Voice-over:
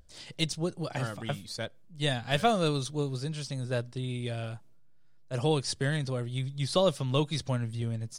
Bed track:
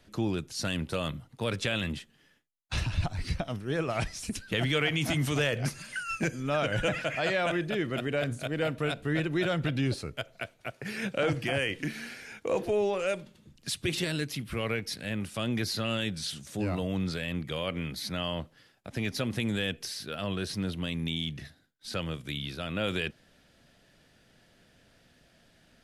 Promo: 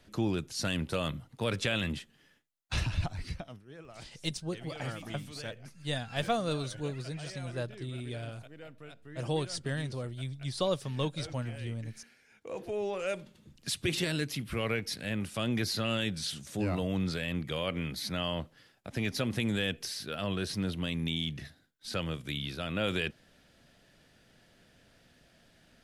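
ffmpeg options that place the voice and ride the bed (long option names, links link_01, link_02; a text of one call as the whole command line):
ffmpeg -i stem1.wav -i stem2.wav -filter_complex "[0:a]adelay=3850,volume=-5dB[link_01];[1:a]volume=18dB,afade=type=out:start_time=2.82:duration=0.83:silence=0.11885,afade=type=in:start_time=12.28:duration=1.23:silence=0.11885[link_02];[link_01][link_02]amix=inputs=2:normalize=0" out.wav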